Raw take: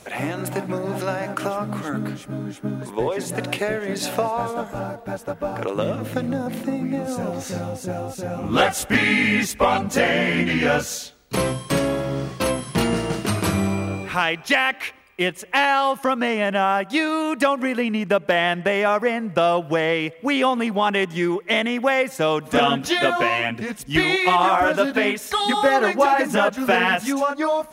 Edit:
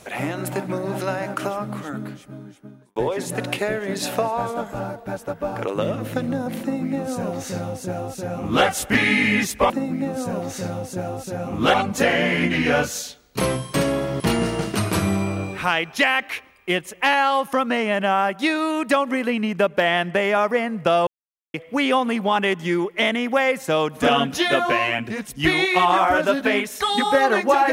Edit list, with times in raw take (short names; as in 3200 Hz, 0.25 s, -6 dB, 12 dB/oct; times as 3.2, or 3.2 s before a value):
1.34–2.96 fade out linear
6.61–8.65 copy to 9.7
12.16–12.71 cut
19.58–20.05 mute